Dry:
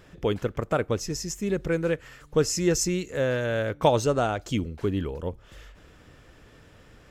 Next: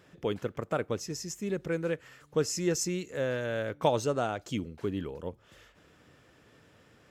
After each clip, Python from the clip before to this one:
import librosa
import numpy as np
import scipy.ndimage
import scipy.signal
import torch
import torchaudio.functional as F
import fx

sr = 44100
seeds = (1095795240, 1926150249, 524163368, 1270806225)

y = scipy.signal.sosfilt(scipy.signal.butter(2, 110.0, 'highpass', fs=sr, output='sos'), x)
y = y * librosa.db_to_amplitude(-5.5)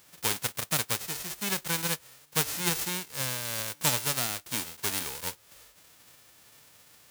y = fx.envelope_flatten(x, sr, power=0.1)
y = fx.rider(y, sr, range_db=10, speed_s=2.0)